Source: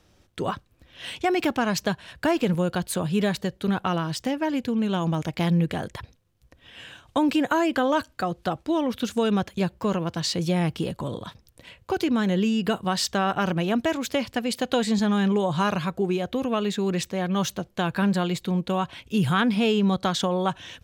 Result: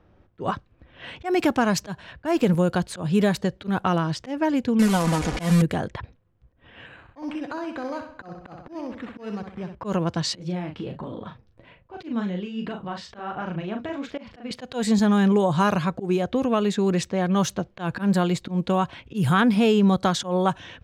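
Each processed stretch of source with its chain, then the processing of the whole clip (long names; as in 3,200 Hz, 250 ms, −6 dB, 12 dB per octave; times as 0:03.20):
0:04.79–0:05.62: linear delta modulator 64 kbit/s, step −24.5 dBFS + comb filter 4.1 ms, depth 54%
0:06.86–0:09.75: downward compressor 2 to 1, threshold −43 dBFS + repeating echo 63 ms, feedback 49%, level −8 dB + bad sample-rate conversion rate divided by 8×, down none, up hold
0:10.36–0:14.51: downward compressor 2 to 1, threshold −31 dBFS + flanger 1.3 Hz, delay 2.9 ms, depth 8.3 ms, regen +40% + double-tracking delay 39 ms −6 dB
whole clip: low-pass that shuts in the quiet parts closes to 1,500 Hz, open at −19.5 dBFS; dynamic equaliser 3,200 Hz, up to −5 dB, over −45 dBFS, Q 1; volume swells 125 ms; level +3.5 dB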